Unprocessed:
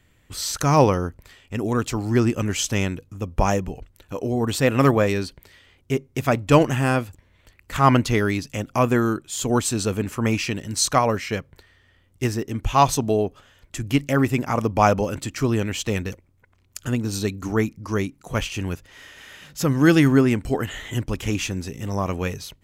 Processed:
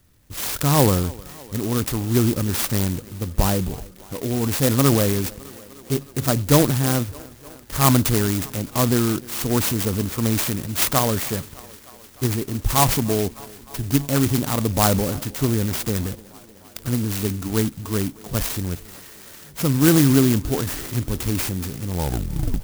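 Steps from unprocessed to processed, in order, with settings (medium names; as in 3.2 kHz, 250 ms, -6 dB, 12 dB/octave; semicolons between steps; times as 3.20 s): tape stop on the ending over 0.76 s; peaking EQ 660 Hz -4.5 dB 2.1 oct; transient shaper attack +1 dB, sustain +7 dB; on a send: thinning echo 305 ms, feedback 78%, high-pass 160 Hz, level -21.5 dB; on the sum: sampling jitter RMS 0.13 ms; trim +1.5 dB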